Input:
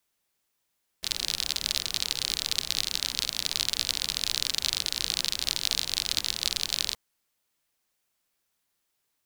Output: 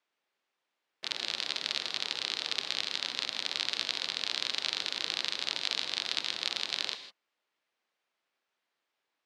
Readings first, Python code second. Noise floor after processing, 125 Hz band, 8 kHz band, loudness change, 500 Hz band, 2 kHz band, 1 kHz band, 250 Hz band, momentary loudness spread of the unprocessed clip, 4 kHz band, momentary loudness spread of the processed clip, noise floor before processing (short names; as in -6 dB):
-85 dBFS, under -10 dB, -12.5 dB, -4.5 dB, +0.5 dB, +0.5 dB, +1.0 dB, -4.0 dB, 2 LU, -4.0 dB, 2 LU, -78 dBFS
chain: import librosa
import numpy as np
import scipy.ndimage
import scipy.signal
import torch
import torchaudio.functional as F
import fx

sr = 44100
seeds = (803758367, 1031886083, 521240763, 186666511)

y = fx.bandpass_edges(x, sr, low_hz=320.0, high_hz=3200.0)
y = fx.rev_gated(y, sr, seeds[0], gate_ms=180, shape='rising', drr_db=10.5)
y = F.gain(torch.from_numpy(y), 1.0).numpy()